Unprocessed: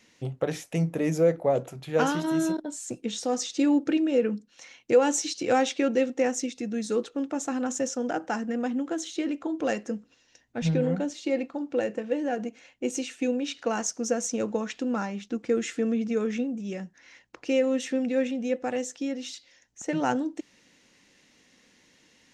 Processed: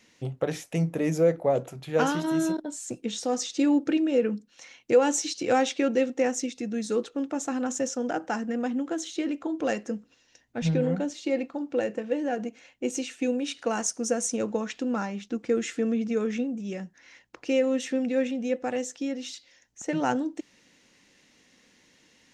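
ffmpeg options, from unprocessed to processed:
ffmpeg -i in.wav -filter_complex "[0:a]asettb=1/sr,asplit=3[link_01][link_02][link_03];[link_01]atrim=end=13.274[link_04];[link_02]atrim=start=13.27:end=14.37,asetpts=PTS-STARTPTS,afade=type=in:duration=0.004:curve=qsin,afade=type=out:start_time=1.096:duration=0.004:curve=qsin,equalizer=frequency=9400:width=3.3:gain=12.5[link_05];[link_03]atrim=start=14.366[link_06];[link_04][link_05]acrossfade=duration=0.004:curve1=hsin:curve2=qsin[link_07];[link_07][link_06]acrossfade=duration=0.004:curve1=qsin:curve2=hsin" out.wav

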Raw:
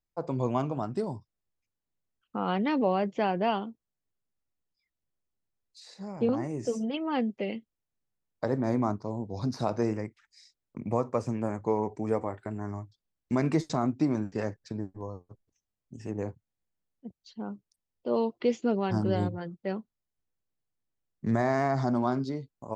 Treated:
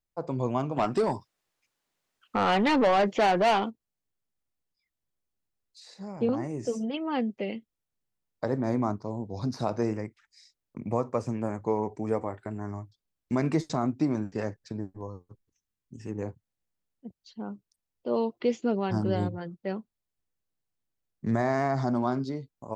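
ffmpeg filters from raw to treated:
ffmpeg -i in.wav -filter_complex "[0:a]asplit=3[link_01][link_02][link_03];[link_01]afade=type=out:start_time=0.76:duration=0.02[link_04];[link_02]asplit=2[link_05][link_06];[link_06]highpass=frequency=720:poles=1,volume=21dB,asoftclip=type=tanh:threshold=-14.5dB[link_07];[link_05][link_07]amix=inputs=2:normalize=0,lowpass=frequency=5900:poles=1,volume=-6dB,afade=type=in:start_time=0.76:duration=0.02,afade=type=out:start_time=3.69:duration=0.02[link_08];[link_03]afade=type=in:start_time=3.69:duration=0.02[link_09];[link_04][link_08][link_09]amix=inputs=3:normalize=0,asettb=1/sr,asplit=3[link_10][link_11][link_12];[link_10]atrim=end=15.074[link_13];[link_11]atrim=start=15.07:end=16.22,asetpts=PTS-STARTPTS,afade=type=in:duration=0.004:curve=qsin,afade=type=out:start_time=1.146:duration=0.004:curve=qsin,equalizer=frequency=660:width_type=o:width=0.39:gain=-12[link_14];[link_12]atrim=start=16.216[link_15];[link_13][link_14]acrossfade=duration=0.004:curve1=hsin:curve2=qsin[link_16];[link_16][link_15]acrossfade=duration=0.004:curve1=qsin:curve2=hsin" out.wav

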